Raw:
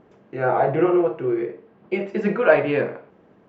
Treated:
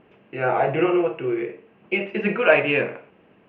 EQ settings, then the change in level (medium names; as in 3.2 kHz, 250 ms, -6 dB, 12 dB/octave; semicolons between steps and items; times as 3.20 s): resonant low-pass 2.7 kHz, resonance Q 5.1; -2.0 dB